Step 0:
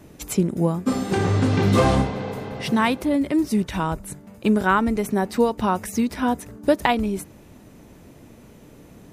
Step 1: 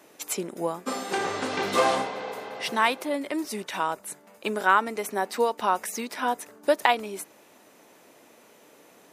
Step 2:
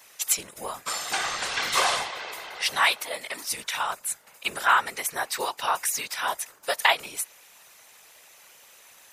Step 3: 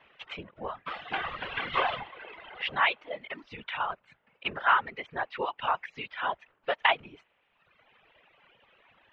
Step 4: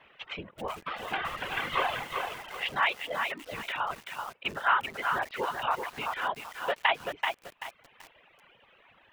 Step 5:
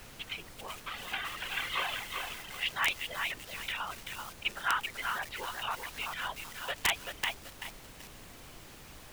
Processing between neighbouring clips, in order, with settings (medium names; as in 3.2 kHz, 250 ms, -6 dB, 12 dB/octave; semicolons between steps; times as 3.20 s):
high-pass 540 Hz 12 dB/octave
amplifier tone stack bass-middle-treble 10-0-10; whisper effect; trim +8.5 dB
elliptic low-pass 3.1 kHz, stop band 80 dB; bass shelf 340 Hz +9.5 dB; reverb removal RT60 1.2 s; trim -3 dB
in parallel at -2 dB: compression 5:1, threshold -36 dBFS, peak gain reduction 16 dB; on the sum: bit-crushed delay 384 ms, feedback 35%, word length 7-bit, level -4.5 dB; trim -3 dB
tilt shelf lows -9.5 dB, about 1.5 kHz; added noise pink -46 dBFS; integer overflow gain 13.5 dB; trim -4.5 dB